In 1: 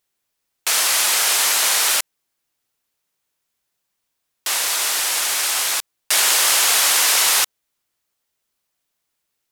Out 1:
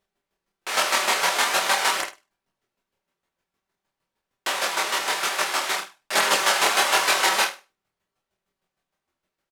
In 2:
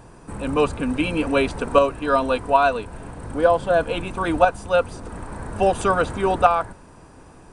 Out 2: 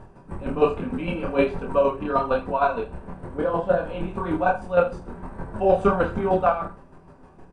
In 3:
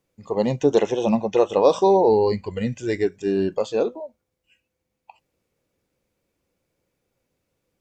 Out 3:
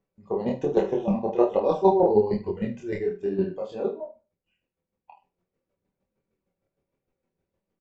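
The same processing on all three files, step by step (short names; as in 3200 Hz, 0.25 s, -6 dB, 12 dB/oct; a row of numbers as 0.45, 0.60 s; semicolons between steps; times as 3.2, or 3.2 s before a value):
chopper 6.5 Hz, depth 65%, duty 20%; on a send: flutter echo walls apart 8.6 m, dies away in 0.29 s; on the sum: flange 0.49 Hz, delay 9.6 ms, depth 2.4 ms, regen -46%; comb 5.2 ms, depth 36%; chorus voices 2, 1.2 Hz, delay 26 ms, depth 3.7 ms; LPF 1100 Hz 6 dB/oct; normalise peaks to -6 dBFS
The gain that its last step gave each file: +17.0, +10.5, +7.5 dB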